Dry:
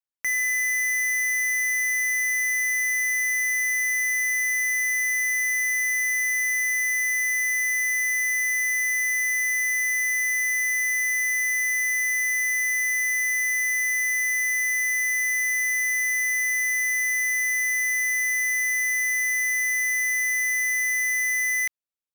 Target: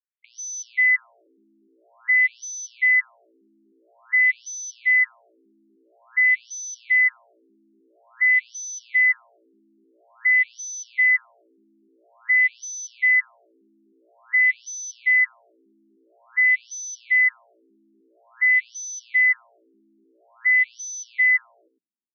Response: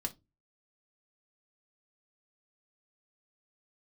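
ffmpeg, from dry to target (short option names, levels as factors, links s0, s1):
-filter_complex "[0:a]equalizer=f=180:w=4.4:g=10.5,bandreject=f=880:w=13,acrossover=split=4400[s0][s1];[s0]dynaudnorm=f=260:g=5:m=3.76[s2];[s2][s1]amix=inputs=2:normalize=0,alimiter=limit=0.178:level=0:latency=1,asplit=2[s3][s4];[s4]aecho=0:1:103:0.447[s5];[s3][s5]amix=inputs=2:normalize=0,afftfilt=real='re*between(b*sr/1024,260*pow(4700/260,0.5+0.5*sin(2*PI*0.49*pts/sr))/1.41,260*pow(4700/260,0.5+0.5*sin(2*PI*0.49*pts/sr))*1.41)':imag='im*between(b*sr/1024,260*pow(4700/260,0.5+0.5*sin(2*PI*0.49*pts/sr))/1.41,260*pow(4700/260,0.5+0.5*sin(2*PI*0.49*pts/sr))*1.41)':win_size=1024:overlap=0.75,volume=0.794"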